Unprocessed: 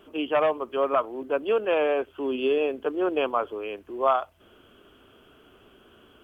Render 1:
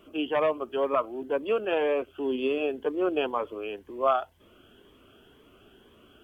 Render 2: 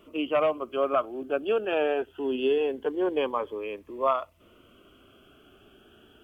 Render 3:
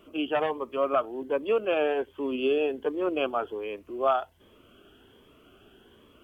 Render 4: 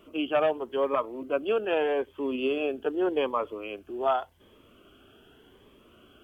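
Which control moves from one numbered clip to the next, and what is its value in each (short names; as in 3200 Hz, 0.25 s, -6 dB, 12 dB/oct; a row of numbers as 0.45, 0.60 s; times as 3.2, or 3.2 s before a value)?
cascading phaser, rate: 2, 0.23, 1.3, 0.85 Hz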